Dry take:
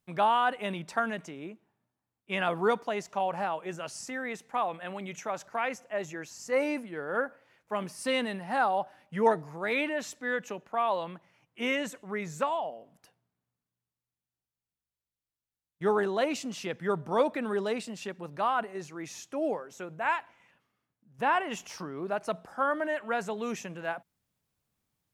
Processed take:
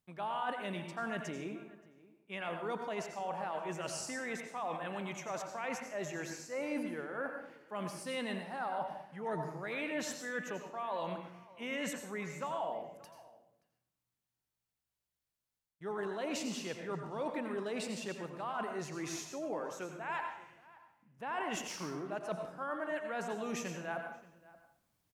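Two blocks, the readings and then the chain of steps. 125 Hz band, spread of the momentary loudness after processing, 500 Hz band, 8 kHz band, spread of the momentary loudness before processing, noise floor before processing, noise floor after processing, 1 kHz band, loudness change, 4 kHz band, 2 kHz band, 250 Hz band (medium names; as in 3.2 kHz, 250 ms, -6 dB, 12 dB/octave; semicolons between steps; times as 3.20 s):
-4.0 dB, 7 LU, -8.5 dB, -1.0 dB, 11 LU, under -85 dBFS, under -85 dBFS, -9.5 dB, -8.0 dB, -6.0 dB, -7.5 dB, -5.5 dB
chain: reverse; compression 6:1, threshold -38 dBFS, peak gain reduction 18.5 dB; reverse; echo from a far wall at 99 m, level -20 dB; plate-style reverb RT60 0.64 s, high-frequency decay 0.8×, pre-delay 75 ms, DRR 4.5 dB; trim +1 dB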